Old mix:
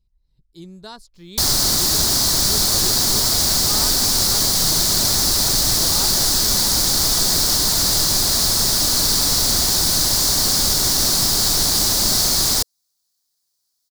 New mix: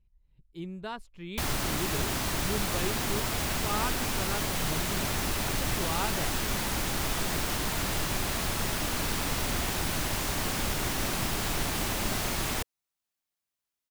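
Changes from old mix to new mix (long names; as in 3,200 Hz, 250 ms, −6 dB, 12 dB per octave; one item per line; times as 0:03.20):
background −6.0 dB
master: add high shelf with overshoot 3,500 Hz −9.5 dB, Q 3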